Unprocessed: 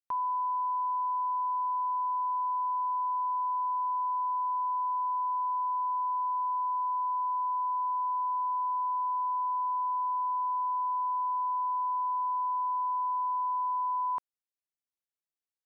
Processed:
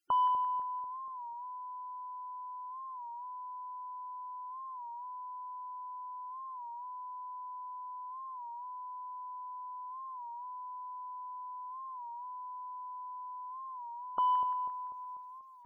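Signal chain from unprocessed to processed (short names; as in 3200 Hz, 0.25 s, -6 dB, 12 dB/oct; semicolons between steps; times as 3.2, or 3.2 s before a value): limiter -35.5 dBFS, peak gain reduction 8 dB; split-band echo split 1000 Hz, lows 0.246 s, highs 0.172 s, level -10 dB; dynamic EQ 1000 Hz, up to -5 dB, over -59 dBFS; soft clip -38 dBFS, distortion -24 dB; loudest bins only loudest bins 64; record warp 33 1/3 rpm, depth 100 cents; gain +17.5 dB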